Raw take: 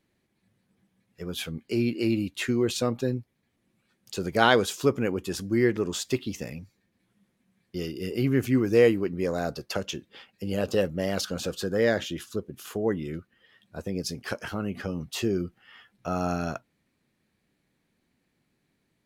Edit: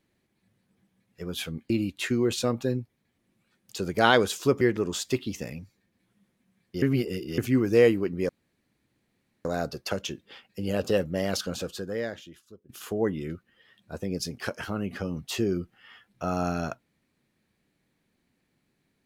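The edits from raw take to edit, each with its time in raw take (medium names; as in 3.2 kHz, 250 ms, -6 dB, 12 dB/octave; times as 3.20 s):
1.70–2.08 s: delete
4.99–5.61 s: delete
7.82–8.38 s: reverse
9.29 s: insert room tone 1.16 s
11.30–12.53 s: fade out quadratic, to -19.5 dB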